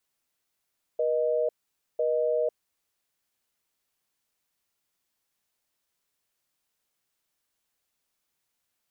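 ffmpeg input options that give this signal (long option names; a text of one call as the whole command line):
ffmpeg -f lavfi -i "aevalsrc='0.0531*(sin(2*PI*480*t)+sin(2*PI*620*t))*clip(min(mod(t,1),0.5-mod(t,1))/0.005,0,1)':duration=1.73:sample_rate=44100" out.wav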